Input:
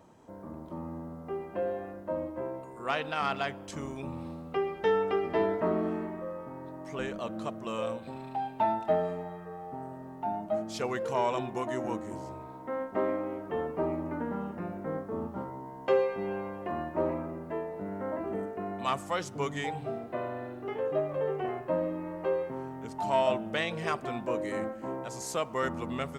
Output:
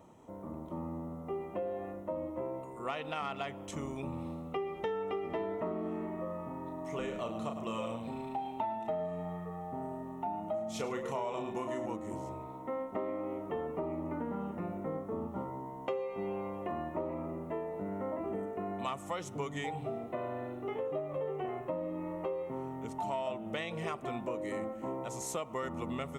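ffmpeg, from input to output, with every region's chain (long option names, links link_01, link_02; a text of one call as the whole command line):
ffmpeg -i in.wav -filter_complex "[0:a]asettb=1/sr,asplit=3[link_01][link_02][link_03];[link_01]atrim=end=6.164[link_04];[link_02]atrim=start=6.16:end=11.86,asetpts=PTS-STARTPTS,afade=type=in:duration=0.004:curve=qsin,afade=type=out:start_time=5.696:duration=0.004:curve=qsin,asplit=2[link_05][link_06];[link_06]adelay=35,volume=-6dB[link_07];[link_05][link_07]amix=inputs=2:normalize=0,atrim=end_sample=251370,aecho=1:1:104:0.299,atrim=end_sample=251370[link_08];[link_03]atrim=start=11.856[link_09];[link_04][link_08]acrossfade=duration=0.004:curve1=hsin:curve2=qsin[link_10];[link_10][link_09]acrossfade=duration=0.004:curve1=qsin:curve2=hsin,equalizer=frequency=4700:width=4.3:gain=-10.5,bandreject=frequency=1600:width=5.3,acompressor=threshold=-33dB:ratio=6" out.wav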